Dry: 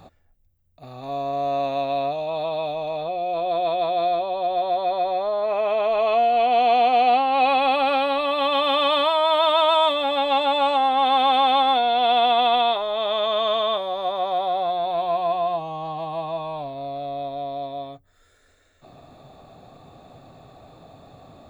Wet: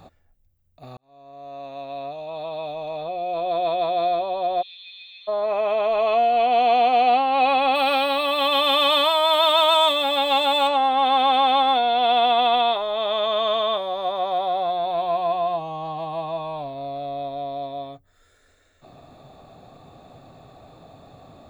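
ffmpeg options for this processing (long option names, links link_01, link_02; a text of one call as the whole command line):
ffmpeg -i in.wav -filter_complex "[0:a]asplit=3[link_01][link_02][link_03];[link_01]afade=type=out:start_time=4.61:duration=0.02[link_04];[link_02]asuperpass=centerf=3700:order=8:qfactor=1.1,afade=type=in:start_time=4.61:duration=0.02,afade=type=out:start_time=5.27:duration=0.02[link_05];[link_03]afade=type=in:start_time=5.27:duration=0.02[link_06];[link_04][link_05][link_06]amix=inputs=3:normalize=0,asplit=3[link_07][link_08][link_09];[link_07]afade=type=out:start_time=7.74:duration=0.02[link_10];[link_08]aemphasis=mode=production:type=75fm,afade=type=in:start_time=7.74:duration=0.02,afade=type=out:start_time=10.67:duration=0.02[link_11];[link_09]afade=type=in:start_time=10.67:duration=0.02[link_12];[link_10][link_11][link_12]amix=inputs=3:normalize=0,asplit=2[link_13][link_14];[link_13]atrim=end=0.97,asetpts=PTS-STARTPTS,afade=type=out:start_time=0.966:duration=0.004:curve=hsin[link_15];[link_14]atrim=start=0.97,asetpts=PTS-STARTPTS,afade=type=in:duration=2.67[link_16];[link_15][link_16]concat=n=2:v=0:a=1" out.wav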